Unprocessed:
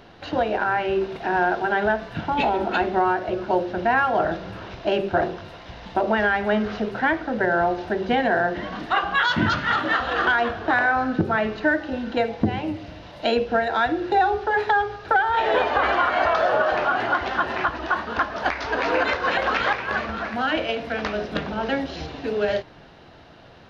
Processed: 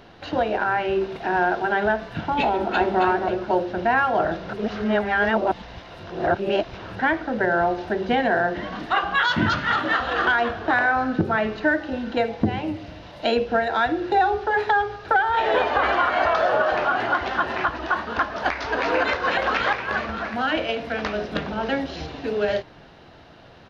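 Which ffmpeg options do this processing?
-filter_complex "[0:a]asplit=2[a][b];[b]afade=t=in:st=2.49:d=0.01,afade=t=out:st=3.01:d=0.01,aecho=0:1:270|540|810:0.595662|0.148916|0.0372289[c];[a][c]amix=inputs=2:normalize=0,asplit=3[d][e][f];[d]atrim=end=4.492[g];[e]atrim=start=4.488:end=6.992,asetpts=PTS-STARTPTS,areverse[h];[f]atrim=start=6.988[i];[g][h]acrossfade=d=0.004:c1=hsin:c2=hsin[j];[j][i]acrossfade=d=0.004:c1=hsin:c2=hsin"

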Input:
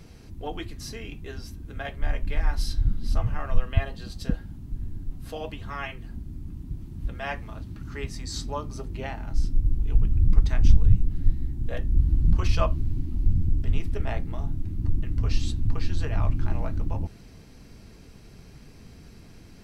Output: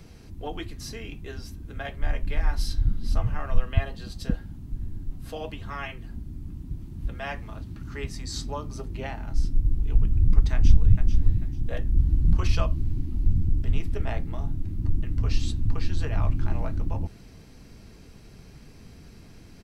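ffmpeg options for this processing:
-filter_complex "[0:a]asplit=2[a][b];[b]afade=t=in:st=10.53:d=0.01,afade=t=out:st=11.04:d=0.01,aecho=0:1:440|880|1320:0.398107|0.0995268|0.0248817[c];[a][c]amix=inputs=2:normalize=0,acrossover=split=350|3000[d][e][f];[e]acompressor=threshold=-30dB:ratio=6[g];[d][g][f]amix=inputs=3:normalize=0"

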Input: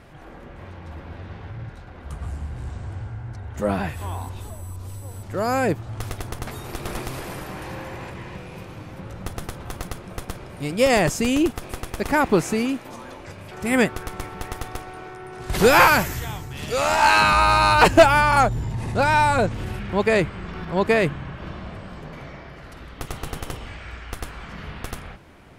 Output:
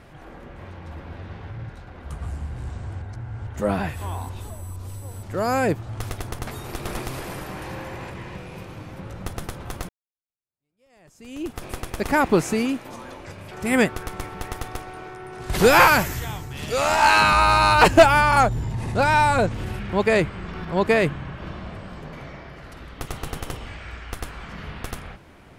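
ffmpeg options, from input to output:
-filter_complex "[0:a]asplit=4[a][b][c][d];[a]atrim=end=3.022[e];[b]atrim=start=3.018:end=3.472,asetpts=PTS-STARTPTS,areverse[f];[c]atrim=start=3.468:end=9.89,asetpts=PTS-STARTPTS,afade=t=out:st=6.418:d=0.004:c=hsin[g];[d]atrim=start=9.89,asetpts=PTS-STARTPTS,afade=t=in:d=1.73:c=exp[h];[e][f]acrossfade=d=0.004:c1=hsin:c2=hsin[i];[g][h]concat=n=2:v=0:a=1[j];[i][j]acrossfade=d=0.004:c1=hsin:c2=hsin"

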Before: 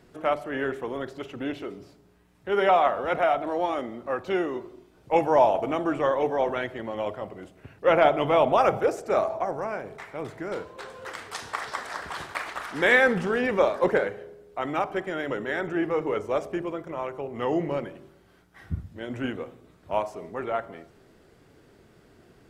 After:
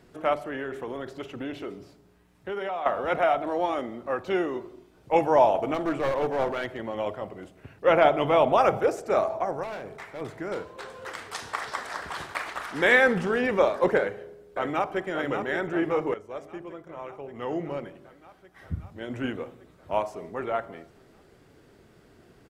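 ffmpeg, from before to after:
-filter_complex "[0:a]asettb=1/sr,asplit=3[a][b][c];[a]atrim=end=0.484[d];[b]atrim=start=0.48:end=2.86,asetpts=PTS-STARTPTS,afade=t=in:d=0.004:c=qsin,afade=t=out:st=2.376:d=0.004:c=qsin,acompressor=threshold=-29dB:ratio=5:attack=3.2:release=140:knee=1:detection=peak[e];[c]atrim=start=2.856[f];[d][e]acrossfade=d=0.004:c1=hsin:c2=qsin[g];[g][f]acrossfade=d=0.004:c1=qsin:c2=hsin,asettb=1/sr,asplit=3[h][i][j];[h]atrim=end=5.744[k];[i]atrim=start=5.74:end=6.78,asetpts=PTS-STARTPTS,afade=t=in:d=0.004:c=qsin,afade=t=out:st=1.036:d=0.004:c=qsin,aeval=exprs='clip(val(0),-1,0.0531)':c=same[l];[j]atrim=start=6.776[m];[k][l]acrossfade=d=0.004:c1=hsin:c2=qsin[n];[n][m]acrossfade=d=0.004:c1=qsin:c2=hsin,asettb=1/sr,asplit=3[o][p][q];[o]atrim=end=9.634[r];[p]atrim=start=9.63:end=10.21,asetpts=PTS-STARTPTS,afade=t=in:d=0.004:c=qsin,afade=t=out:st=0.576:d=0.004:c=qsin,asoftclip=type=hard:threshold=-32dB[s];[q]atrim=start=10.206[t];[r][s]acrossfade=d=0.004:c1=hsin:c2=qsin[u];[u][t]acrossfade=d=0.004:c1=qsin:c2=hsin,asplit=2[v][w];[w]afade=t=in:st=13.98:d=0.01,afade=t=out:st=15.06:d=0.01,aecho=0:1:580|1160|1740|2320|2900|3480|4060|4640|5220|5800|6380:0.421697|0.295188|0.206631|0.144642|0.101249|0.0708745|0.0496122|0.0347285|0.02431|0.017017|0.0119119[x];[v][x]amix=inputs=2:normalize=0,asplit=2[y][z];[y]atrim=end=16.14,asetpts=PTS-STARTPTS,afade=t=out:st=16.136:d=0.004:c=hsin:silence=0.237137[aa];[z]atrim=start=16.14,asetpts=PTS-STARTPTS,afade=t=in:d=3.23:silence=0.237137[ab];[aa][ab]concat=n=2:v=0:a=1"

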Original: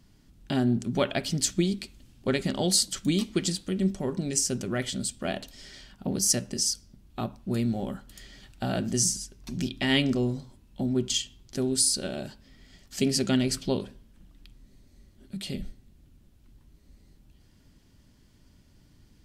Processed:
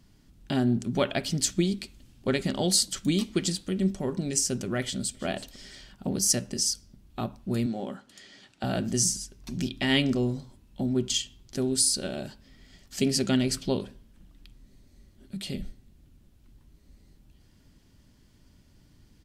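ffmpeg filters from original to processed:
-filter_complex "[0:a]asplit=2[a][b];[b]afade=t=in:st=4.81:d=0.01,afade=t=out:st=5.23:d=0.01,aecho=0:1:330|660|990:0.125893|0.0377678|0.0113303[c];[a][c]amix=inputs=2:normalize=0,asettb=1/sr,asplit=3[d][e][f];[d]atrim=end=7.664[g];[e]atrim=start=7.66:end=8.64,asetpts=PTS-STARTPTS,afade=t=in:d=0.004:c=qsin,afade=t=out:st=0.976:d=0.004:c=qsin,highpass=220,lowpass=7.9k[h];[f]atrim=start=8.636[i];[g][h]acrossfade=d=0.004:c1=hsin:c2=qsin[j];[j][i]acrossfade=d=0.004:c1=qsin:c2=hsin"

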